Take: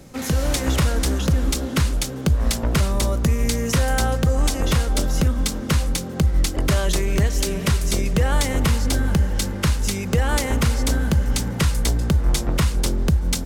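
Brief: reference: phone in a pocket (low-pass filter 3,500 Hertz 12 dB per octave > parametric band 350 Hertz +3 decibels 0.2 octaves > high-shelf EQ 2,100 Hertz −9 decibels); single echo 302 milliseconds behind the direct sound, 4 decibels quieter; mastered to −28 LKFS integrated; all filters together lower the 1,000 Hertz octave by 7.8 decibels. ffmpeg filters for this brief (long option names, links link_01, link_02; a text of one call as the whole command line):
ffmpeg -i in.wav -af "lowpass=3500,equalizer=frequency=350:width_type=o:width=0.2:gain=3,equalizer=frequency=1000:width_type=o:gain=-8.5,highshelf=frequency=2100:gain=-9,aecho=1:1:302:0.631,volume=-7dB" out.wav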